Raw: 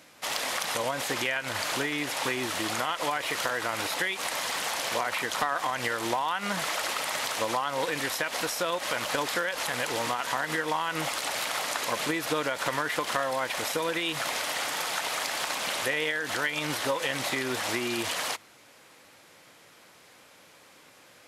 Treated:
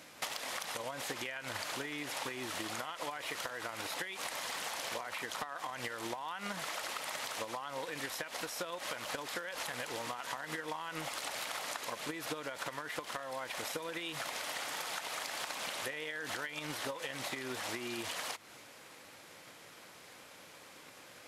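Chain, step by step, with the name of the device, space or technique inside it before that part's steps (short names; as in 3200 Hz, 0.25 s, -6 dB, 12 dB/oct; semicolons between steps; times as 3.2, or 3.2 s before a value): drum-bus smash (transient shaper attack +8 dB, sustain +2 dB; compressor 12:1, threshold -36 dBFS, peak gain reduction 19.5 dB; soft clip -22.5 dBFS, distortion -28 dB)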